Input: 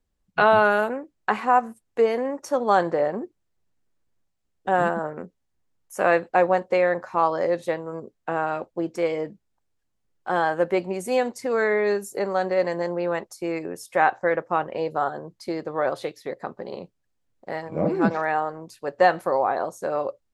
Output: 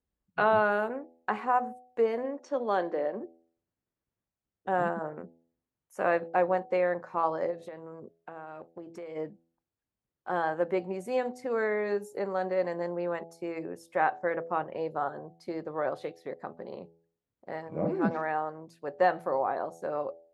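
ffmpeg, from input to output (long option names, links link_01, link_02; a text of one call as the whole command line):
ffmpeg -i in.wav -filter_complex "[0:a]asplit=3[link_01][link_02][link_03];[link_01]afade=type=out:start_time=2.23:duration=0.02[link_04];[link_02]highpass=frequency=210:width=0.5412,highpass=frequency=210:width=1.3066,equalizer=frequency=850:width_type=q:width=4:gain=-5,equalizer=frequency=1300:width_type=q:width=4:gain=-4,equalizer=frequency=3200:width_type=q:width=4:gain=4,lowpass=frequency=6600:width=0.5412,lowpass=frequency=6600:width=1.3066,afade=type=in:start_time=2.23:duration=0.02,afade=type=out:start_time=3.19:duration=0.02[link_05];[link_03]afade=type=in:start_time=3.19:duration=0.02[link_06];[link_04][link_05][link_06]amix=inputs=3:normalize=0,asplit=3[link_07][link_08][link_09];[link_07]afade=type=out:start_time=7.5:duration=0.02[link_10];[link_08]acompressor=threshold=-32dB:ratio=5:attack=3.2:release=140:knee=1:detection=peak,afade=type=in:start_time=7.5:duration=0.02,afade=type=out:start_time=9.15:duration=0.02[link_11];[link_09]afade=type=in:start_time=9.15:duration=0.02[link_12];[link_10][link_11][link_12]amix=inputs=3:normalize=0,highpass=50,highshelf=frequency=3200:gain=-10,bandreject=frequency=83.25:width_type=h:width=4,bandreject=frequency=166.5:width_type=h:width=4,bandreject=frequency=249.75:width_type=h:width=4,bandreject=frequency=333:width_type=h:width=4,bandreject=frequency=416.25:width_type=h:width=4,bandreject=frequency=499.5:width_type=h:width=4,bandreject=frequency=582.75:width_type=h:width=4,bandreject=frequency=666:width_type=h:width=4,bandreject=frequency=749.25:width_type=h:width=4,bandreject=frequency=832.5:width_type=h:width=4,volume=-6dB" out.wav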